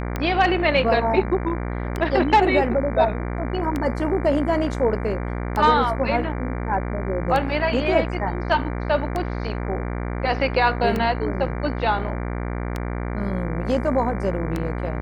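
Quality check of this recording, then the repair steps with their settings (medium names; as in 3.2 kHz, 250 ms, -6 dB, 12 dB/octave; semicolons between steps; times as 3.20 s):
buzz 60 Hz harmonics 39 -27 dBFS
tick 33 1/3 rpm -12 dBFS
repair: de-click; de-hum 60 Hz, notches 39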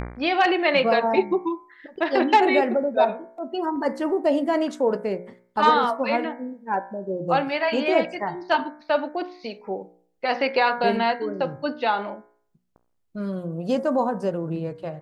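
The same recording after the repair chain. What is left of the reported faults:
nothing left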